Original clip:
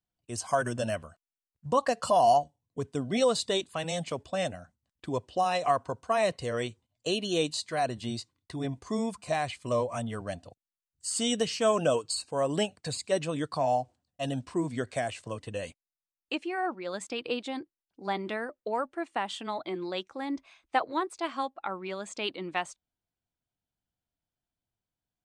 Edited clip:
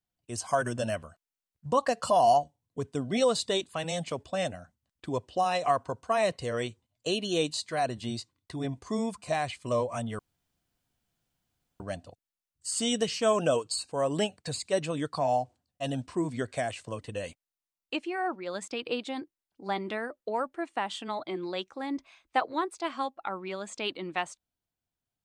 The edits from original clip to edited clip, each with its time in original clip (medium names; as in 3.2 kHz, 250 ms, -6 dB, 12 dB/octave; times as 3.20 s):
10.19 s: insert room tone 1.61 s